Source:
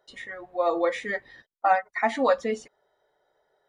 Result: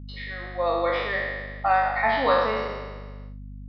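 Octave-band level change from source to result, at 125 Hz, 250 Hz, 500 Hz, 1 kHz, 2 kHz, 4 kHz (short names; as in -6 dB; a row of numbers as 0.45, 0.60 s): n/a, -2.5 dB, +1.0 dB, +2.5 dB, +4.5 dB, +7.0 dB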